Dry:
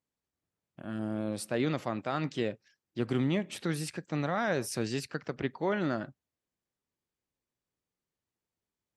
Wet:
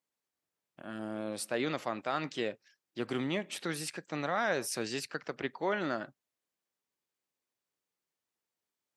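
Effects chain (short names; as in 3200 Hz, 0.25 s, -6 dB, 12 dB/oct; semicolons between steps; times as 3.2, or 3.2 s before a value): HPF 500 Hz 6 dB/oct; gain +1.5 dB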